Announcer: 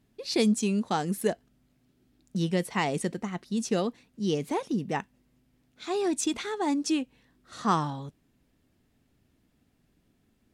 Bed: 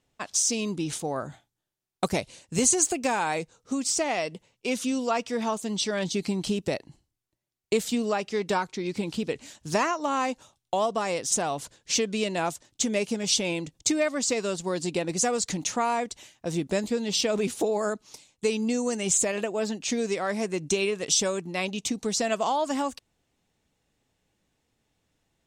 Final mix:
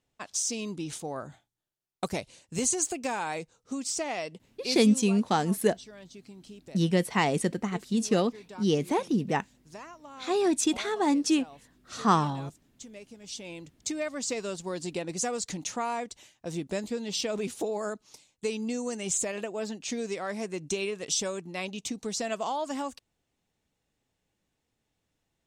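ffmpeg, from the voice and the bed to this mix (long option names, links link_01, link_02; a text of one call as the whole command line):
ffmpeg -i stem1.wav -i stem2.wav -filter_complex "[0:a]adelay=4400,volume=2.5dB[link_01];[1:a]volume=9dB,afade=type=out:start_time=4.6:duration=0.57:silence=0.188365,afade=type=in:start_time=13.18:duration=1.13:silence=0.188365[link_02];[link_01][link_02]amix=inputs=2:normalize=0" out.wav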